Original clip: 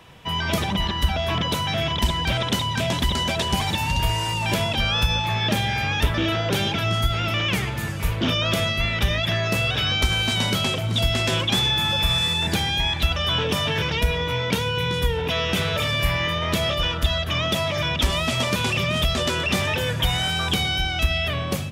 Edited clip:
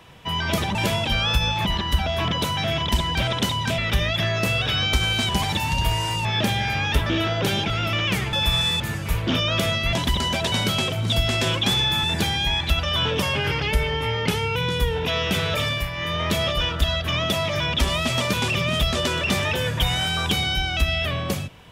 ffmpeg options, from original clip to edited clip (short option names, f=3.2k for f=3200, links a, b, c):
-filter_complex "[0:a]asplit=16[a][b][c][d][e][f][g][h][i][j][k][l][m][n][o][p];[a]atrim=end=0.752[q];[b]atrim=start=4.428:end=5.332[r];[c]atrim=start=0.748:end=2.882[s];[d]atrim=start=8.868:end=10.382[t];[e]atrim=start=3.468:end=4.432[u];[f]atrim=start=5.328:end=6.782[v];[g]atrim=start=7.108:end=7.742[w];[h]atrim=start=11.898:end=12.372[x];[i]atrim=start=7.738:end=8.872[y];[j]atrim=start=2.878:end=3.472[z];[k]atrim=start=10.378:end=11.902[aa];[l]atrim=start=12.368:end=13.554[ab];[m]atrim=start=13.55:end=14.78,asetpts=PTS-STARTPTS,asetrate=40572,aresample=44100[ac];[n]atrim=start=14.776:end=16.12,asetpts=PTS-STARTPTS,afade=t=out:st=1.104:d=0.24:silence=0.398107[ad];[o]atrim=start=16.12:end=16.15,asetpts=PTS-STARTPTS,volume=-8dB[ae];[p]atrim=start=16.15,asetpts=PTS-STARTPTS,afade=t=in:d=0.24:silence=0.398107[af];[q][r]acrossfade=d=0.004:c1=hsin:c2=hsin[ag];[ag][s]acrossfade=d=0.004:c1=hsin:c2=hsin[ah];[ah][t]acrossfade=d=0.004:c1=hsin:c2=hsin[ai];[ai][u]acrossfade=d=0.004:c1=hsin:c2=hsin[aj];[aj][v]acrossfade=d=0.004:c1=hsin:c2=hsin[ak];[ak][w]acrossfade=d=0.004:c1=hsin:c2=hsin[al];[al][x]acrossfade=d=0.004:c1=hsin:c2=hsin[am];[am][y]acrossfade=d=0.004:c1=hsin:c2=hsin[an];[an][z]acrossfade=d=0.004:c1=hsin:c2=hsin[ao];[ao][aa]acrossfade=d=0.004:c1=hsin:c2=hsin[ap];[ap][ab]acrossfade=d=0.004:c1=hsin:c2=hsin[aq];[aq][ac]acrossfade=d=0.004:c1=hsin:c2=hsin[ar];[ad][ae][af]concat=n=3:v=0:a=1[as];[ar][as]acrossfade=d=0.004:c1=hsin:c2=hsin"